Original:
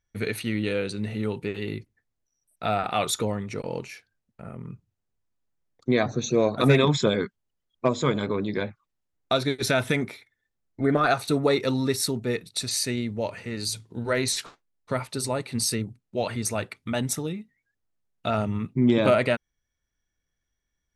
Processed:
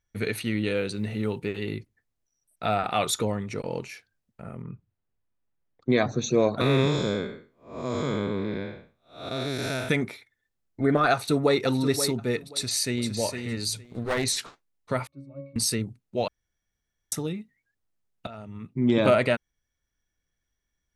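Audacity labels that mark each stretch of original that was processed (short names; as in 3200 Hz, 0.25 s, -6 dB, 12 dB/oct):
0.750000	1.580000	short-mantissa float mantissa of 6-bit
4.620000	5.890000	LPF 2800 Hz
6.610000	9.890000	time blur width 0.248 s
11.120000	11.600000	echo throw 0.53 s, feedback 20%, level -9.5 dB
12.500000	13.120000	echo throw 0.46 s, feedback 15%, level -7 dB
13.840000	14.240000	minimum comb delay 0.45 ms
15.070000	15.560000	octave resonator C#, decay 0.48 s
16.280000	17.120000	room tone
18.270000	18.980000	fade in quadratic, from -17.5 dB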